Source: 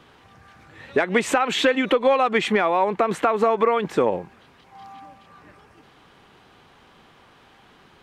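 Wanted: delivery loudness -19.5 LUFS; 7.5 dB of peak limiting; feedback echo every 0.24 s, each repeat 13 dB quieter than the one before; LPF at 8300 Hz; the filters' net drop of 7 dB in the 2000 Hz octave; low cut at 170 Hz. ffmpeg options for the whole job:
-af "highpass=170,lowpass=8.3k,equalizer=f=2k:t=o:g=-9,alimiter=limit=-16dB:level=0:latency=1,aecho=1:1:240|480|720:0.224|0.0493|0.0108,volume=6dB"

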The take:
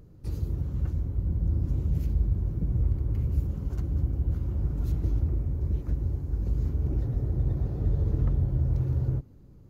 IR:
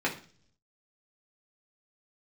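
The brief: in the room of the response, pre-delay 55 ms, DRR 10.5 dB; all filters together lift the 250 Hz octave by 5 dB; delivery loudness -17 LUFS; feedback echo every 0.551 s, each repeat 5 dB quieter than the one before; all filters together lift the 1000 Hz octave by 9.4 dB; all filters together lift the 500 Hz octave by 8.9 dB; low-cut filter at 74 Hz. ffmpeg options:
-filter_complex "[0:a]highpass=74,equalizer=f=250:t=o:g=5,equalizer=f=500:t=o:g=8,equalizer=f=1k:t=o:g=9,aecho=1:1:551|1102|1653|2204|2755|3306|3857:0.562|0.315|0.176|0.0988|0.0553|0.031|0.0173,asplit=2[a][b];[1:a]atrim=start_sample=2205,adelay=55[c];[b][c]afir=irnorm=-1:irlink=0,volume=-20.5dB[d];[a][d]amix=inputs=2:normalize=0,volume=11dB"

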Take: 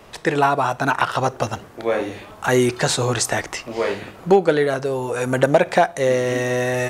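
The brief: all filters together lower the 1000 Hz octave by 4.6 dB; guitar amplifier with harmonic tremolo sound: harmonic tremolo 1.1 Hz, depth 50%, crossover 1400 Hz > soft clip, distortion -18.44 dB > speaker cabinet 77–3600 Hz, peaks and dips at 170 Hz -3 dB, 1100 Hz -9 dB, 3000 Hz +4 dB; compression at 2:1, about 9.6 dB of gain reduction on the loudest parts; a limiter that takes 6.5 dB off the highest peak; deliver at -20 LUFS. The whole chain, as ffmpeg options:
-filter_complex "[0:a]equalizer=f=1k:t=o:g=-4,acompressor=threshold=-29dB:ratio=2,alimiter=limit=-18dB:level=0:latency=1,acrossover=split=1400[a][b];[a]aeval=exprs='val(0)*(1-0.5/2+0.5/2*cos(2*PI*1.1*n/s))':c=same[c];[b]aeval=exprs='val(0)*(1-0.5/2-0.5/2*cos(2*PI*1.1*n/s))':c=same[d];[c][d]amix=inputs=2:normalize=0,asoftclip=threshold=-23dB,highpass=77,equalizer=f=170:t=q:w=4:g=-3,equalizer=f=1.1k:t=q:w=4:g=-9,equalizer=f=3k:t=q:w=4:g=4,lowpass=f=3.6k:w=0.5412,lowpass=f=3.6k:w=1.3066,volume=14dB"

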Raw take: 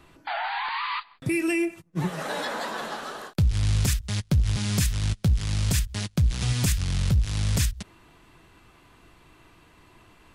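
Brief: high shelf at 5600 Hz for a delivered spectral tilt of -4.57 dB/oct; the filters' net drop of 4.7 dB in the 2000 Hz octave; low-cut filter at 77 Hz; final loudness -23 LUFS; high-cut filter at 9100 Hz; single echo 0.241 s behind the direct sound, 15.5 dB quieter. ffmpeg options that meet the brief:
-af "highpass=77,lowpass=9.1k,equalizer=f=2k:t=o:g=-7,highshelf=f=5.6k:g=6,aecho=1:1:241:0.168,volume=4.5dB"

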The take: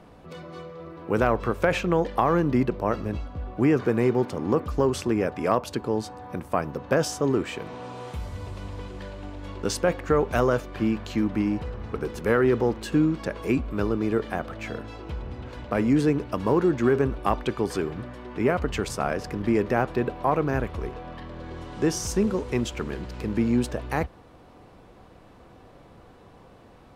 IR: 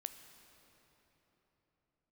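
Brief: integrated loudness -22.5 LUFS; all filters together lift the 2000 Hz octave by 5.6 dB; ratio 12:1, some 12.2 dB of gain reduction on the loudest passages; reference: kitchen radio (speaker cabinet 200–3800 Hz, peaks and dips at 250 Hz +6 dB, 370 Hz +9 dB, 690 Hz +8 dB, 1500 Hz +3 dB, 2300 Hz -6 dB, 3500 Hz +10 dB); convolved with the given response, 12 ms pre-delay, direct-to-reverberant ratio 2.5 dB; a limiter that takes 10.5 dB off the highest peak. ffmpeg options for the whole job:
-filter_complex "[0:a]equalizer=f=2k:t=o:g=6,acompressor=threshold=-28dB:ratio=12,alimiter=limit=-23.5dB:level=0:latency=1,asplit=2[a][b];[1:a]atrim=start_sample=2205,adelay=12[c];[b][c]afir=irnorm=-1:irlink=0,volume=1dB[d];[a][d]amix=inputs=2:normalize=0,highpass=200,equalizer=f=250:t=q:w=4:g=6,equalizer=f=370:t=q:w=4:g=9,equalizer=f=690:t=q:w=4:g=8,equalizer=f=1.5k:t=q:w=4:g=3,equalizer=f=2.3k:t=q:w=4:g=-6,equalizer=f=3.5k:t=q:w=4:g=10,lowpass=f=3.8k:w=0.5412,lowpass=f=3.8k:w=1.3066,volume=8dB"

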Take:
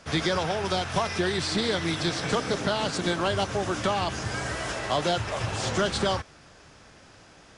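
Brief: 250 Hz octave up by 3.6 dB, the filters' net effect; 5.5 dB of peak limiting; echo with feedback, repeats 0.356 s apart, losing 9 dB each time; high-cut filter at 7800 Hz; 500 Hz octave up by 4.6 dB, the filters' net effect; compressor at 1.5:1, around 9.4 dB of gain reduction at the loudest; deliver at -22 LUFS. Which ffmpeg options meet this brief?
-af "lowpass=7.8k,equalizer=f=250:t=o:g=3.5,equalizer=f=500:t=o:g=5,acompressor=threshold=-45dB:ratio=1.5,alimiter=level_in=0.5dB:limit=-24dB:level=0:latency=1,volume=-0.5dB,aecho=1:1:356|712|1068|1424:0.355|0.124|0.0435|0.0152,volume=12.5dB"

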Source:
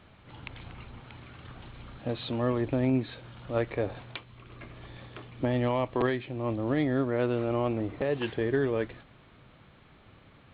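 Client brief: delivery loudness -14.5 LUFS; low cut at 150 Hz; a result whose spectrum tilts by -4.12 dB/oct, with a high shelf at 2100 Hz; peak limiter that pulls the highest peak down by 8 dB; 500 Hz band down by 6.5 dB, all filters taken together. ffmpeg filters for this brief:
-af "highpass=150,equalizer=f=500:t=o:g=-9,highshelf=f=2.1k:g=8,volume=22dB,alimiter=limit=-2dB:level=0:latency=1"

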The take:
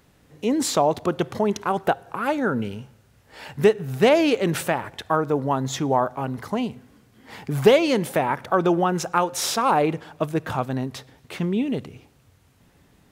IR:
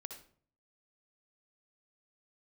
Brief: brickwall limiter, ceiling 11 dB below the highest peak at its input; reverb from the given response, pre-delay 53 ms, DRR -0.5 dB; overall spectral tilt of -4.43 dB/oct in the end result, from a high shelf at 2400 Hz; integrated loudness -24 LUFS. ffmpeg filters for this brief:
-filter_complex "[0:a]highshelf=f=2.4k:g=5,alimiter=limit=-13.5dB:level=0:latency=1,asplit=2[a][b];[1:a]atrim=start_sample=2205,adelay=53[c];[b][c]afir=irnorm=-1:irlink=0,volume=4.5dB[d];[a][d]amix=inputs=2:normalize=0,volume=-2dB"

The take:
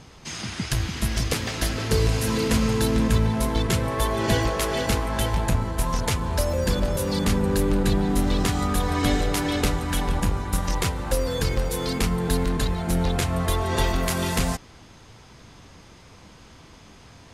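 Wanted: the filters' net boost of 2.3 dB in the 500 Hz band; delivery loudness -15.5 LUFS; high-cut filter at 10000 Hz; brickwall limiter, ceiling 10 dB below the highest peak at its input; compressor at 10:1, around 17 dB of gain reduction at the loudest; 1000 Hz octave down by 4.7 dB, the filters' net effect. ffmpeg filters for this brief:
-af "lowpass=10k,equalizer=f=500:t=o:g=4.5,equalizer=f=1k:t=o:g=-7.5,acompressor=threshold=-34dB:ratio=10,volume=24.5dB,alimiter=limit=-4.5dB:level=0:latency=1"

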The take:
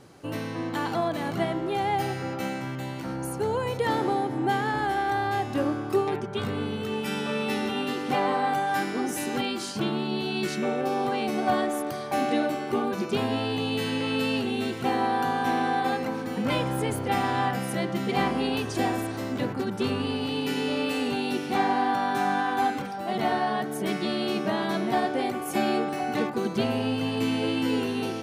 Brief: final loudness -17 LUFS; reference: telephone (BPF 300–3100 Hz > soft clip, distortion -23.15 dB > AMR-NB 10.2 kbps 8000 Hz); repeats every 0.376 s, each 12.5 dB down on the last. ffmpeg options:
-af "highpass=300,lowpass=3.1k,aecho=1:1:376|752|1128:0.237|0.0569|0.0137,asoftclip=threshold=-17dB,volume=13.5dB" -ar 8000 -c:a libopencore_amrnb -b:a 10200

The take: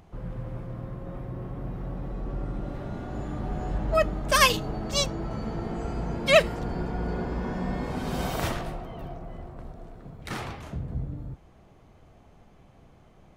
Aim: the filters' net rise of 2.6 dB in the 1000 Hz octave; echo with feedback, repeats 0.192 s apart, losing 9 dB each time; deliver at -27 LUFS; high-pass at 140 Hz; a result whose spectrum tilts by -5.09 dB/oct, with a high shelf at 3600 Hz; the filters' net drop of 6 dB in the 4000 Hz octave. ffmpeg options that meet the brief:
-af "highpass=140,equalizer=f=1k:t=o:g=4,highshelf=f=3.6k:g=-8,equalizer=f=4k:t=o:g=-3,aecho=1:1:192|384|576|768:0.355|0.124|0.0435|0.0152,volume=2dB"

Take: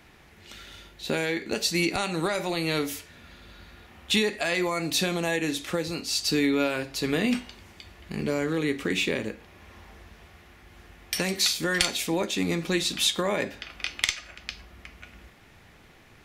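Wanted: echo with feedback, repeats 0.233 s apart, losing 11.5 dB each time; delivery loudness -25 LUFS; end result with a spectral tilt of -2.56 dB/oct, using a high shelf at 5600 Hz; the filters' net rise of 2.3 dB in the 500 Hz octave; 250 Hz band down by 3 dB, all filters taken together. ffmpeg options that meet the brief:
-af "equalizer=f=250:t=o:g=-6,equalizer=f=500:t=o:g=4.5,highshelf=f=5.6k:g=3,aecho=1:1:233|466|699:0.266|0.0718|0.0194,volume=1dB"

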